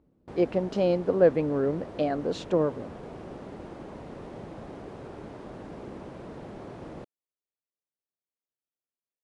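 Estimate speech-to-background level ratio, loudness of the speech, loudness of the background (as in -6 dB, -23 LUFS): 16.0 dB, -26.5 LUFS, -42.5 LUFS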